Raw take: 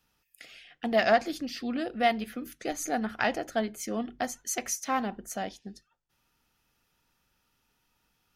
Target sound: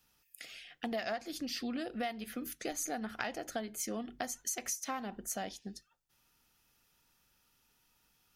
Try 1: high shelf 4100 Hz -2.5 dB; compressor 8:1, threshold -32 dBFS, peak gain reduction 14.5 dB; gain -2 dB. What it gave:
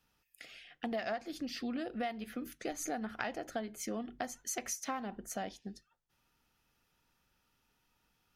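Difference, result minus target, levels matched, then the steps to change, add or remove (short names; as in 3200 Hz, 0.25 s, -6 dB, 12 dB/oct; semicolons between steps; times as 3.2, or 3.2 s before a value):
4000 Hz band -2.5 dB
change: high shelf 4100 Hz +7.5 dB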